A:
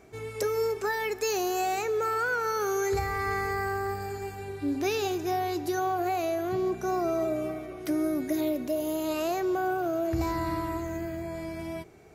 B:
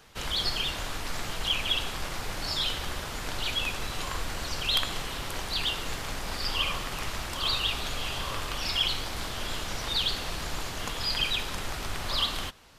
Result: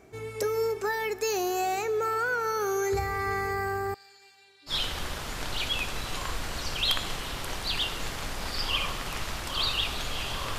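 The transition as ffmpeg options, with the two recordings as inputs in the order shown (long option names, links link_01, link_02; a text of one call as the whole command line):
ffmpeg -i cue0.wav -i cue1.wav -filter_complex "[0:a]asettb=1/sr,asplit=3[link_01][link_02][link_03];[link_01]atrim=end=3.944[link_04];[link_02]atrim=start=3.94:end=4.74,asetpts=PTS-STARTPTS,afade=type=in:duration=0.004:curve=qsin,afade=type=out:start_time=0.796:duration=0.004:curve=qsin,bandpass=frequency=4000:width_type=q:width=2.3:csg=0[link_05];[link_03]atrim=start=4.736[link_06];[link_04][link_05]acrossfade=duration=0.004:curve1=hsin:curve2=qsin[link_07];[link_07][link_06]acrossfade=duration=0.004:curve1=qsin:curve2=hsin,apad=whole_dur=10.58,atrim=end=10.58,atrim=end=4.74,asetpts=PTS-STARTPTS[link_08];[1:a]atrim=start=2.52:end=8.44,asetpts=PTS-STARTPTS[link_09];[link_08][link_09]acrossfade=duration=0.08:curve1=tri:curve2=tri" out.wav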